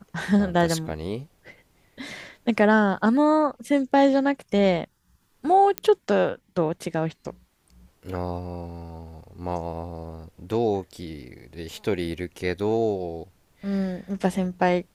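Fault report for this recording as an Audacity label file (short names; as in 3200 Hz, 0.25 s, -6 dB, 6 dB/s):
5.780000	5.780000	pop -8 dBFS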